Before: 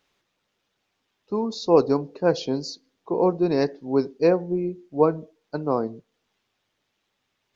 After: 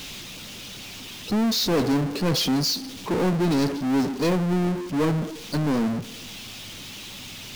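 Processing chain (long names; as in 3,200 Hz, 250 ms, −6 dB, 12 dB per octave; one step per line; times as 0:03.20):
flat-topped bell 830 Hz −12 dB 2.7 octaves
power curve on the samples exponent 0.35
level −2 dB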